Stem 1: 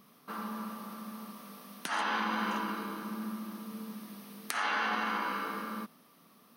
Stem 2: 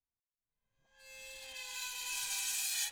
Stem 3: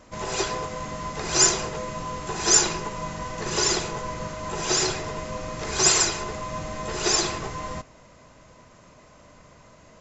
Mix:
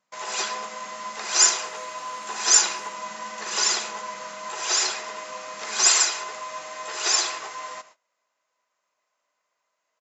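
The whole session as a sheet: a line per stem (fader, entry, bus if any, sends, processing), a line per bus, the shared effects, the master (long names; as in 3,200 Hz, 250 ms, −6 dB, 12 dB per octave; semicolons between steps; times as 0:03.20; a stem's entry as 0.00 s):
−9.5 dB, 0.00 s, bus A, no send, no echo send, low-pass with resonance 4,600 Hz
−14.5 dB, 0.00 s, bus A, no send, echo send −17.5 dB, meter weighting curve ITU-R 468; downward compressor, threshold −30 dBFS, peak gain reduction 9 dB
+1.5 dB, 0.00 s, no bus, no send, echo send −19.5 dB, high-pass filter 840 Hz 12 dB per octave
bus A: 0.0 dB, low-shelf EQ 170 Hz +11.5 dB; downward compressor 3 to 1, threshold −53 dBFS, peak gain reduction 14 dB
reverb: not used
echo: single-tap delay 80 ms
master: noise gate −49 dBFS, range −23 dB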